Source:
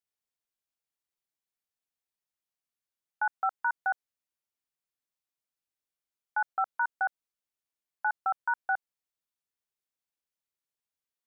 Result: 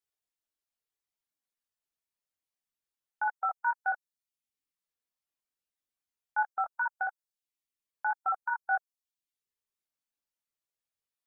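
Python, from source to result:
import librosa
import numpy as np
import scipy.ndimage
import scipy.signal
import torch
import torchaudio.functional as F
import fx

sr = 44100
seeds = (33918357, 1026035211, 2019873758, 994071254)

y = fx.dereverb_blind(x, sr, rt60_s=0.73)
y = fx.chorus_voices(y, sr, voices=4, hz=0.26, base_ms=21, depth_ms=2.4, mix_pct=45)
y = y * librosa.db_to_amplitude(3.0)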